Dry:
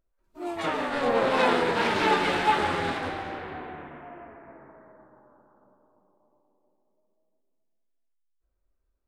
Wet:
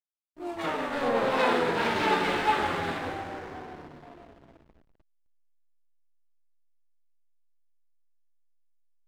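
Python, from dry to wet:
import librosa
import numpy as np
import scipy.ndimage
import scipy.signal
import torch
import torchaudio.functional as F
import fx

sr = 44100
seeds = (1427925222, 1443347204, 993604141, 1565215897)

y = fx.room_early_taps(x, sr, ms=(42, 60), db=(-14.0, -9.0))
y = fx.backlash(y, sr, play_db=-39.0)
y = y * librosa.db_to_amplitude(-2.5)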